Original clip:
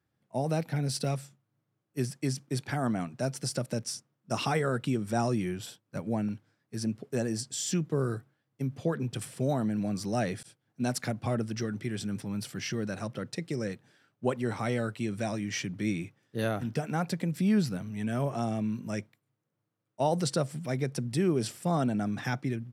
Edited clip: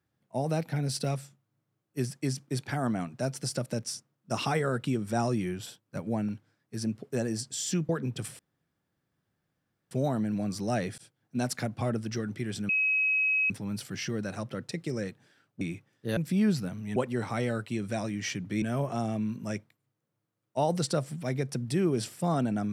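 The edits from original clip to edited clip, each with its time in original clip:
7.89–8.86 s: delete
9.36 s: insert room tone 1.52 s
12.14 s: add tone 2.55 kHz -23 dBFS 0.81 s
14.25–15.91 s: move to 18.05 s
16.47–17.26 s: delete

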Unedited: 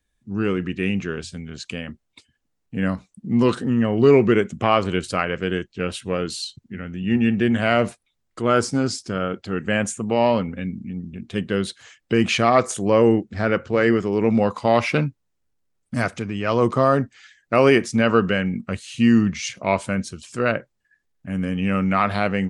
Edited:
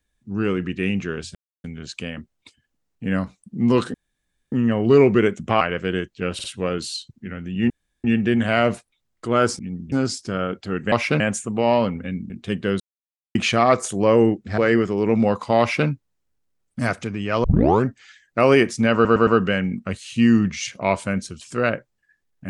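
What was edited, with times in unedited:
1.35 s: insert silence 0.29 s
3.65 s: insert room tone 0.58 s
4.74–5.19 s: delete
5.92 s: stutter 0.05 s, 3 plays
7.18 s: insert room tone 0.34 s
10.83–11.16 s: move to 8.73 s
11.66–12.21 s: mute
13.44–13.73 s: delete
14.75–15.03 s: copy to 9.73 s
16.59 s: tape start 0.42 s
18.09 s: stutter 0.11 s, 4 plays

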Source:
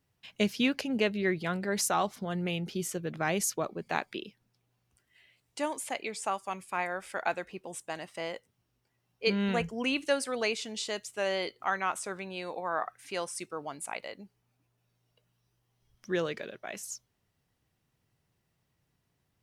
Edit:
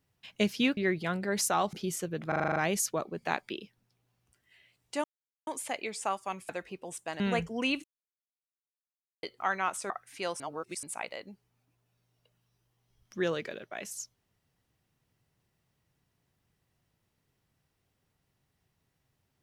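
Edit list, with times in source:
0.77–1.17 s: delete
2.13–2.65 s: delete
3.20 s: stutter 0.04 s, 8 plays
5.68 s: insert silence 0.43 s
6.70–7.31 s: delete
8.02–9.42 s: delete
10.06–11.45 s: mute
12.12–12.82 s: delete
13.32–13.75 s: reverse

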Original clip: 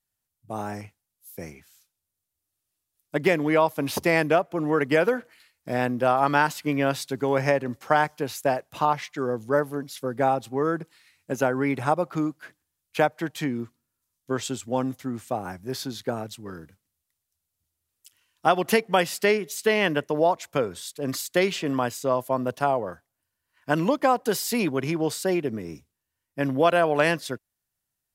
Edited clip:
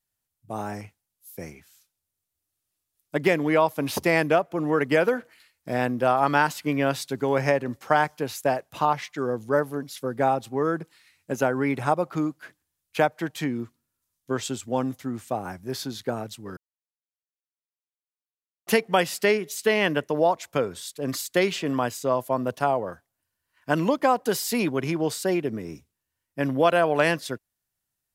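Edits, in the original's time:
16.57–18.67 s: mute

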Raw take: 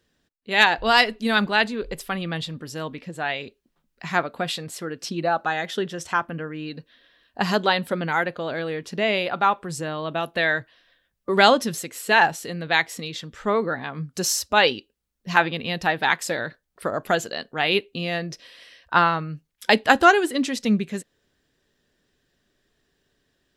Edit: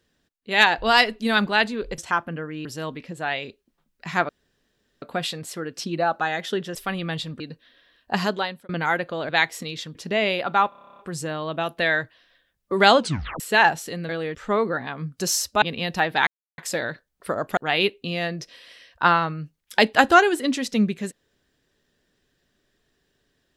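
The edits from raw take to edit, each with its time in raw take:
1.98–2.63 s: swap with 6.00–6.67 s
4.27 s: insert room tone 0.73 s
7.42–7.96 s: fade out
8.56–8.82 s: swap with 12.66–13.32 s
9.56 s: stutter 0.03 s, 11 plays
11.55 s: tape stop 0.42 s
14.59–15.49 s: delete
16.14 s: insert silence 0.31 s
17.13–17.48 s: delete

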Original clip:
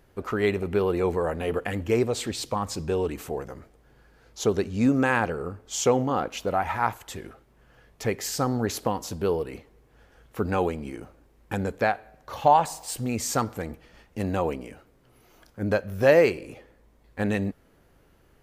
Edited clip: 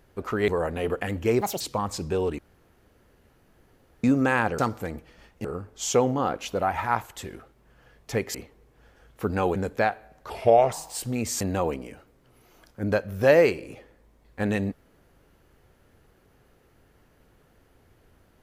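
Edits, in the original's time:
0.48–1.12 s: delete
2.05–2.38 s: speed 169%
3.16–4.81 s: room tone
8.26–9.50 s: delete
10.71–11.58 s: delete
12.32–12.66 s: speed 79%
13.34–14.20 s: move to 5.36 s

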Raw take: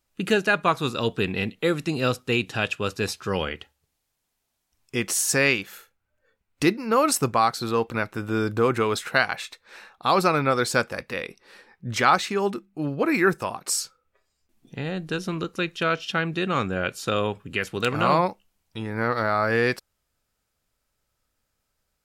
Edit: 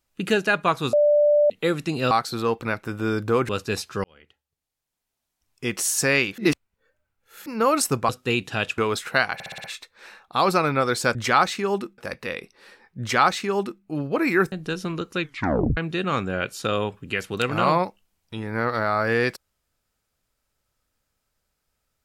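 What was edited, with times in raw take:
0.93–1.50 s: bleep 590 Hz -14 dBFS
2.11–2.80 s: swap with 7.40–8.78 s
3.35–5.18 s: fade in
5.69–6.77 s: reverse
9.34 s: stutter 0.06 s, 6 plays
11.87–12.70 s: copy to 10.85 s
13.39–14.95 s: delete
15.64 s: tape stop 0.56 s

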